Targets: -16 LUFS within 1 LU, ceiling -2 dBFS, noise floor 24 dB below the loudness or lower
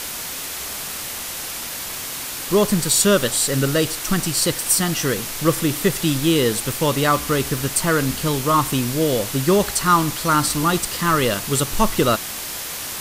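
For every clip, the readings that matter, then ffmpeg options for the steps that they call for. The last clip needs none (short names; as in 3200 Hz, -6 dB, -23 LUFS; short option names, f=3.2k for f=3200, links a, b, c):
noise floor -30 dBFS; noise floor target -44 dBFS; loudness -19.5 LUFS; peak -2.5 dBFS; loudness target -16.0 LUFS
-> -af "afftdn=nr=14:nf=-30"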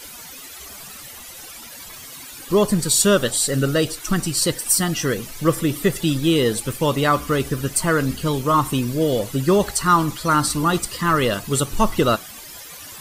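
noise floor -39 dBFS; noise floor target -44 dBFS
-> -af "afftdn=nr=6:nf=-39"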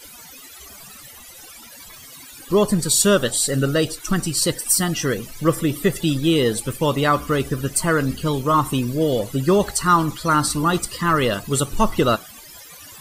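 noise floor -42 dBFS; noise floor target -44 dBFS
-> -af "afftdn=nr=6:nf=-42"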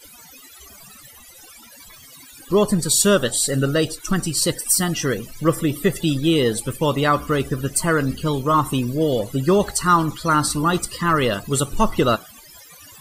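noise floor -45 dBFS; loudness -20.0 LUFS; peak -3.0 dBFS; loudness target -16.0 LUFS
-> -af "volume=4dB,alimiter=limit=-2dB:level=0:latency=1"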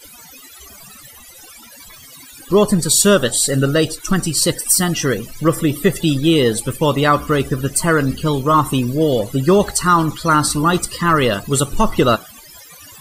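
loudness -16.0 LUFS; peak -2.0 dBFS; noise floor -41 dBFS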